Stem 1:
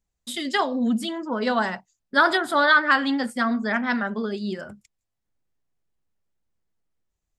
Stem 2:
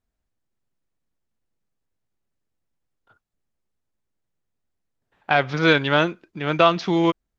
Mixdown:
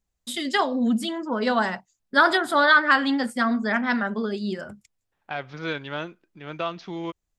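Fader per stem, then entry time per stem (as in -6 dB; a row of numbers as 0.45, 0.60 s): +0.5, -13.0 dB; 0.00, 0.00 s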